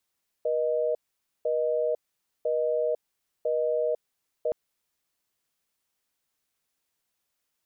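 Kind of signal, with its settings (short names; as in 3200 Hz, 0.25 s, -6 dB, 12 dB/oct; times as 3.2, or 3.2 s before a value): call progress tone busy tone, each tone -26 dBFS 4.07 s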